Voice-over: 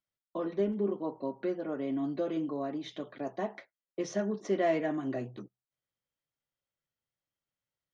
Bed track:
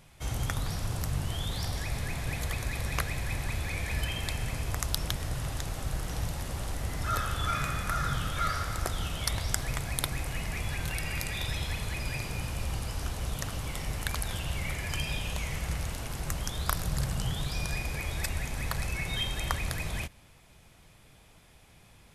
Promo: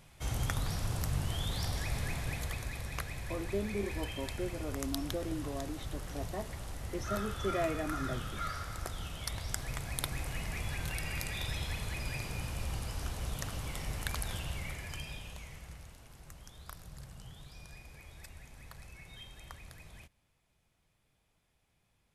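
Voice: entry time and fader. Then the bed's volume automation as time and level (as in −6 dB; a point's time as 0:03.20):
2.95 s, −5.5 dB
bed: 0:02.09 −2 dB
0:02.88 −8 dB
0:09.29 −8 dB
0:10.22 −4 dB
0:14.34 −4 dB
0:15.99 −18.5 dB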